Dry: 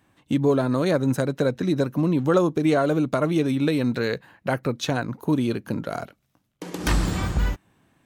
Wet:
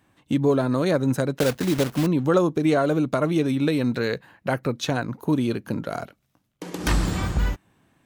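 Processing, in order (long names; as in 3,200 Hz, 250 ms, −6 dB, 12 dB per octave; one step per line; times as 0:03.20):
0:01.39–0:02.07: one scale factor per block 3 bits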